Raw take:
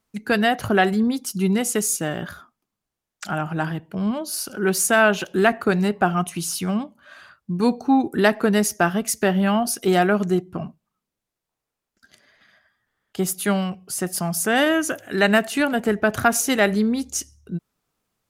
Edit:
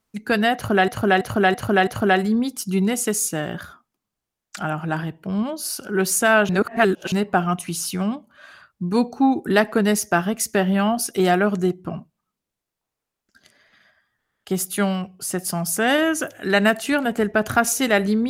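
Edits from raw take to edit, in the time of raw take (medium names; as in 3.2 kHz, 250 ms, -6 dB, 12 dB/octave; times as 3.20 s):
0.55–0.88 s: loop, 5 plays
5.17–5.80 s: reverse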